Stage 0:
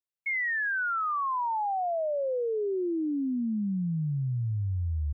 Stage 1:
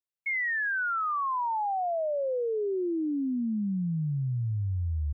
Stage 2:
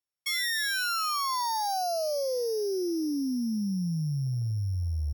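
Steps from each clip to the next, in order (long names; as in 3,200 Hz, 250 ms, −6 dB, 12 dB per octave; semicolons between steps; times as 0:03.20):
no processing that can be heard
samples sorted by size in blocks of 8 samples; AAC 192 kbit/s 48,000 Hz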